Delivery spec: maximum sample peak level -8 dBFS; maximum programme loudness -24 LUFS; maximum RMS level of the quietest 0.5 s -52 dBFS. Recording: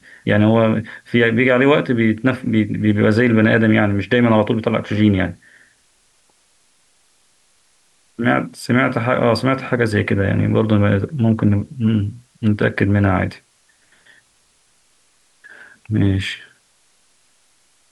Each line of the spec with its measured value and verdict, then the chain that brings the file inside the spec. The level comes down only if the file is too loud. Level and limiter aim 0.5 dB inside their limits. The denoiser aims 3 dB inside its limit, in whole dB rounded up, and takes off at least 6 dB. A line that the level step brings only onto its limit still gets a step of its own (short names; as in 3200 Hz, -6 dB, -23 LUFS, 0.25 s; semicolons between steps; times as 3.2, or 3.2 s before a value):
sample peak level -2.5 dBFS: fail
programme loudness -17.0 LUFS: fail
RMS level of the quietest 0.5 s -59 dBFS: OK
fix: gain -7.5 dB